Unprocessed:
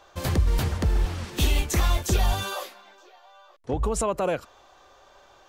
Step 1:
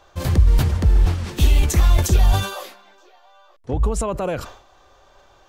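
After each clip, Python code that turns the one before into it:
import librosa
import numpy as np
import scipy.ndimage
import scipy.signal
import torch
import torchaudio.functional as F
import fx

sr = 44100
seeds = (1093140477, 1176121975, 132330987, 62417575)

y = fx.low_shelf(x, sr, hz=170.0, db=9.0)
y = fx.sustainer(y, sr, db_per_s=100.0)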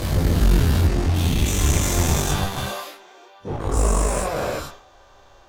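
y = fx.spec_dilate(x, sr, span_ms=480)
y = fx.clip_asym(y, sr, top_db=-21.5, bottom_db=-5.5)
y = fx.detune_double(y, sr, cents=10)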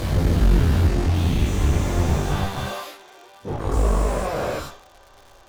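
y = fx.dmg_crackle(x, sr, seeds[0], per_s=130.0, level_db=-32.0)
y = fx.slew_limit(y, sr, full_power_hz=78.0)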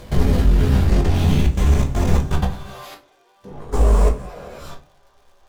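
y = fx.level_steps(x, sr, step_db=21)
y = fx.room_shoebox(y, sr, seeds[1], volume_m3=170.0, walls='furnished', distance_m=1.3)
y = y * librosa.db_to_amplitude(2.5)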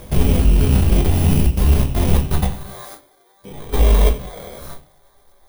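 y = fx.bit_reversed(x, sr, seeds[2], block=16)
y = y * librosa.db_to_amplitude(1.5)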